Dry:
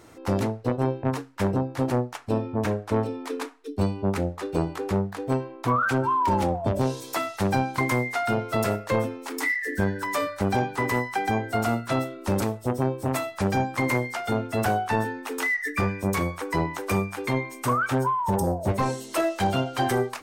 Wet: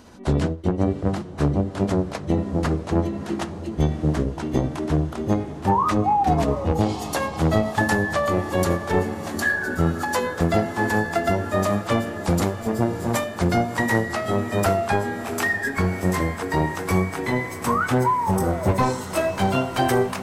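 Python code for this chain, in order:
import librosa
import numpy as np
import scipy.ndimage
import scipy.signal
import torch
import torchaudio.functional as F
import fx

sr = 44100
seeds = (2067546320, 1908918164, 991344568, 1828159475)

y = fx.pitch_glide(x, sr, semitones=-5.5, runs='ending unshifted')
y = fx.echo_diffused(y, sr, ms=675, feedback_pct=72, wet_db=-14)
y = F.gain(torch.from_numpy(y), 4.5).numpy()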